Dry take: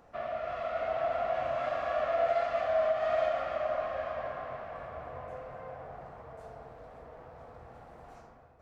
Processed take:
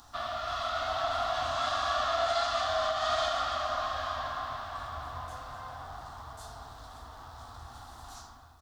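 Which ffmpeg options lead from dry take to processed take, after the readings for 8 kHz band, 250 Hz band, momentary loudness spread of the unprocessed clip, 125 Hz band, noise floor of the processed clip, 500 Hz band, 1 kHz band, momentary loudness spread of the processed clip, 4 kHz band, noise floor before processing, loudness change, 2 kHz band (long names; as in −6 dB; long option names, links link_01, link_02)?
can't be measured, −0.5 dB, 21 LU, +4.5 dB, −51 dBFS, −4.5 dB, +3.5 dB, 19 LU, +16.5 dB, −55 dBFS, +1.0 dB, +4.0 dB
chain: -af "firequalizer=gain_entry='entry(100,0);entry(160,-16);entry(260,-5);entry(490,-22);entry(790,-3);entry(1200,2);entry(2300,-10);entry(3500,13)':delay=0.05:min_phase=1,volume=7.5dB"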